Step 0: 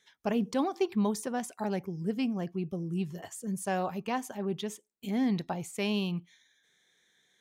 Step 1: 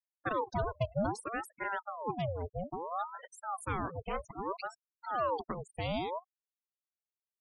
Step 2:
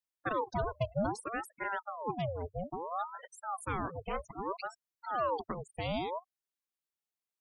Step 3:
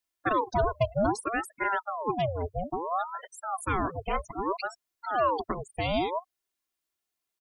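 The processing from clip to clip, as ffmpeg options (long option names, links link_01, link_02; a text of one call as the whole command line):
ffmpeg -i in.wav -af "afftfilt=real='re*gte(hypot(re,im),0.0224)':imag='im*gte(hypot(re,im),0.0224)':win_size=1024:overlap=0.75,aeval=exprs='val(0)*sin(2*PI*740*n/s+740*0.65/0.61*sin(2*PI*0.61*n/s))':channel_layout=same,volume=-1.5dB" out.wav
ffmpeg -i in.wav -af "equalizer=frequency=97:width=6.4:gain=-5.5" out.wav
ffmpeg -i in.wav -af "aecho=1:1:2.9:0.39,volume=6.5dB" out.wav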